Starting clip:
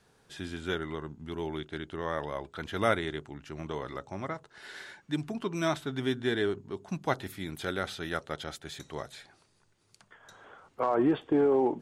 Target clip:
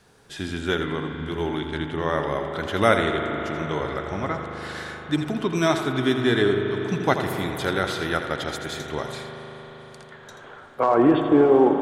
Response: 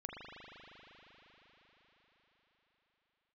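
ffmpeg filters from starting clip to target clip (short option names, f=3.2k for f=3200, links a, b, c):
-filter_complex "[0:a]asplit=2[a][b];[1:a]atrim=start_sample=2205,adelay=83[c];[b][c]afir=irnorm=-1:irlink=0,volume=-3.5dB[d];[a][d]amix=inputs=2:normalize=0,volume=8dB"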